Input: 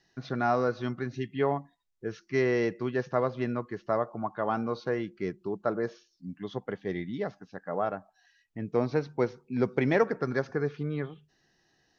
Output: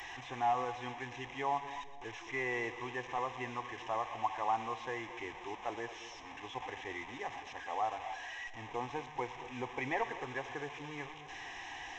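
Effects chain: delta modulation 32 kbps, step -35.5 dBFS; in parallel at +1 dB: limiter -20.5 dBFS, peak gain reduction 7.5 dB; on the sum: resonant low shelf 540 Hz -7 dB, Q 3; fixed phaser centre 930 Hz, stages 8; split-band echo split 810 Hz, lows 0.224 s, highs 0.118 s, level -14 dB; gain -7 dB

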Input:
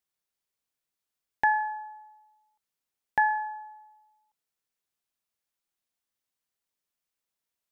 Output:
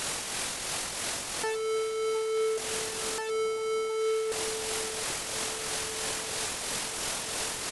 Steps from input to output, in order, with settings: infinite clipping; dynamic EQ 1100 Hz, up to +5 dB, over -48 dBFS, Q 0.82; vocal rider 0.5 s; pitch shift -11.5 st; tremolo triangle 3 Hz, depth 45%; echo with dull and thin repeats by turns 0.712 s, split 1000 Hz, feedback 69%, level -9.5 dB; gain +5.5 dB

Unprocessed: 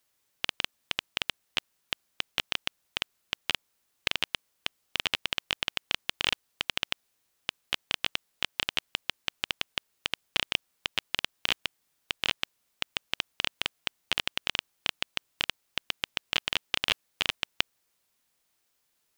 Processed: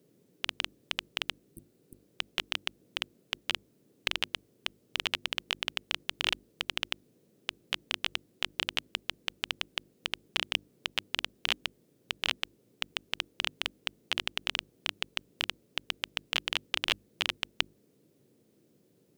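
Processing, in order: spectral repair 1.5–1.97, 380–8500 Hz; notches 50/100/150/200/250/300/350 Hz; band noise 110–470 Hz -65 dBFS; gain -2 dB

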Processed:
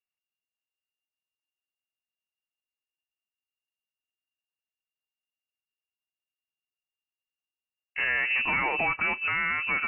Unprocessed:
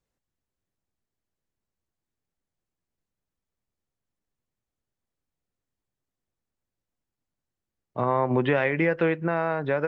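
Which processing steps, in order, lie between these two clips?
bell 320 Hz -12 dB 1.2 oct; sample leveller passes 3; inverted band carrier 2800 Hz; gain -6.5 dB

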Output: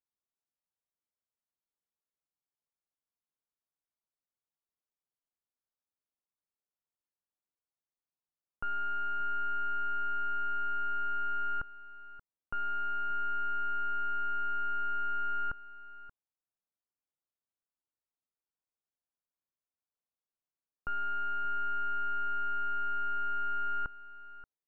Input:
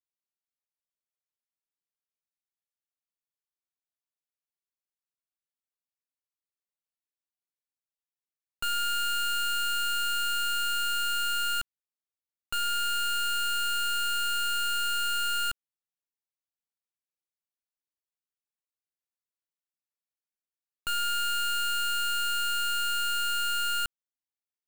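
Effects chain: LPF 1400 Hz 24 dB/oct; echo 0.58 s -15.5 dB

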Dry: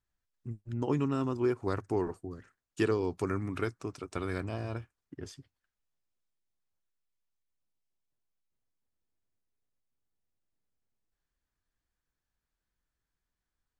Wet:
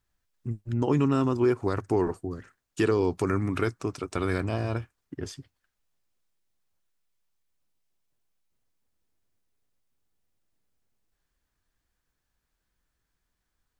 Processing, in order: limiter -21.5 dBFS, peak gain reduction 5.5 dB; gain +7.5 dB

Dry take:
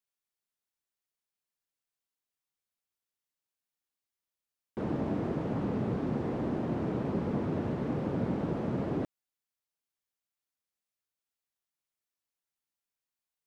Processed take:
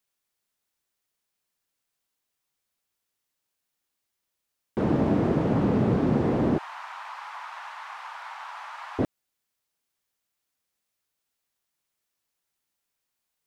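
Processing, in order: 6.58–8.99 steep high-pass 880 Hz 48 dB/oct; gain +9 dB

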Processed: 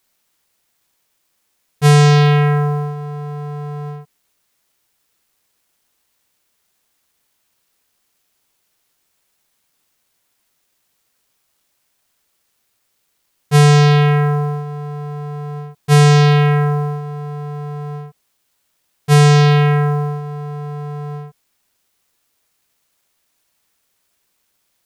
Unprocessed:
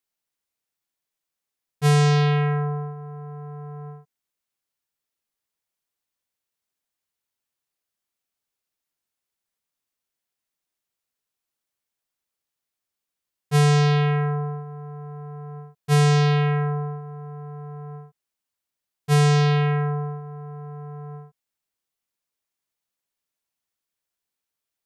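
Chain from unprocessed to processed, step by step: G.711 law mismatch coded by mu; gain +7.5 dB

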